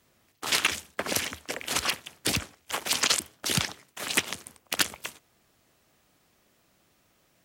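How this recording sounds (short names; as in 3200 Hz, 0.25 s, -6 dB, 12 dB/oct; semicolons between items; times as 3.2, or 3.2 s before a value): noise floor -68 dBFS; spectral tilt -2.0 dB/oct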